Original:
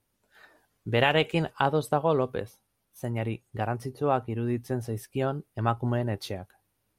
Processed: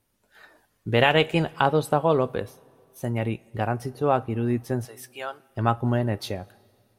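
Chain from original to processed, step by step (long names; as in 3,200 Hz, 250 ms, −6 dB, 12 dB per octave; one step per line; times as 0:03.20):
0:04.85–0:05.50: high-pass filter 950 Hz 12 dB per octave
coupled-rooms reverb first 0.21 s, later 2.3 s, from −19 dB, DRR 15 dB
level +3.5 dB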